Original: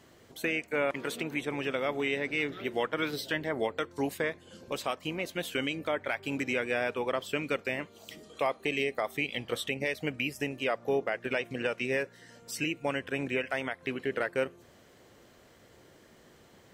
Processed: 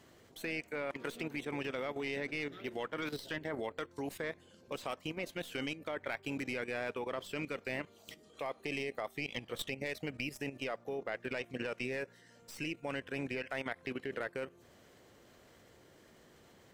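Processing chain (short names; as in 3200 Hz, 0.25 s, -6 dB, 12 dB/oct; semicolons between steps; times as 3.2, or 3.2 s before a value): tracing distortion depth 0.039 ms; level quantiser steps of 12 dB; gain -1.5 dB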